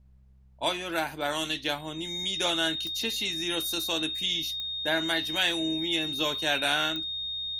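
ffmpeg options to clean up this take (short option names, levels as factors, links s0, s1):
-af "adeclick=t=4,bandreject=f=65:t=h:w=4,bandreject=f=130:t=h:w=4,bandreject=f=195:t=h:w=4,bandreject=f=3700:w=30,agate=range=0.0891:threshold=0.0224"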